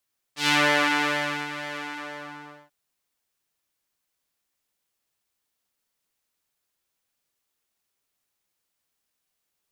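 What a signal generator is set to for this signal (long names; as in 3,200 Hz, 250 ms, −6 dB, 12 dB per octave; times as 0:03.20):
subtractive patch with pulse-width modulation D4, oscillator 2 square, interval −12 semitones, detune 11 cents, oscillator 2 level −4.5 dB, sub −8 dB, noise −13.5 dB, filter bandpass, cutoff 1,100 Hz, Q 1.1, attack 119 ms, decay 1.00 s, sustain −15 dB, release 0.93 s, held 1.41 s, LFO 2.1 Hz, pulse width 38%, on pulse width 16%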